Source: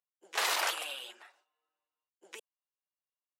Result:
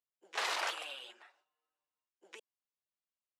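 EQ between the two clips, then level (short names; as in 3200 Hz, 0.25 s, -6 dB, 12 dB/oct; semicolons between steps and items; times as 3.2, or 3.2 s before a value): air absorption 58 m; -3.5 dB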